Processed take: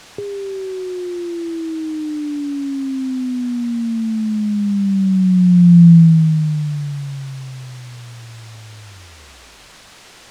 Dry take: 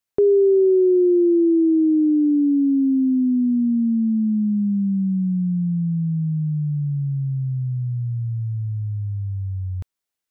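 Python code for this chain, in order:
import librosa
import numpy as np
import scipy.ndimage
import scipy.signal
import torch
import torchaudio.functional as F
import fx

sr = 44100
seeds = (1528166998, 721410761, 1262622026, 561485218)

y = fx.tape_stop_end(x, sr, length_s=1.46)
y = fx.over_compress(y, sr, threshold_db=-21.0, ratio=-1.0)
y = fx.filter_sweep_highpass(y, sr, from_hz=110.0, to_hz=270.0, start_s=4.14, end_s=7.83, q=5.7)
y = fx.quant_dither(y, sr, seeds[0], bits=6, dither='triangular')
y = fx.air_absorb(y, sr, metres=80.0)
y = F.gain(torch.from_numpy(y), -1.0).numpy()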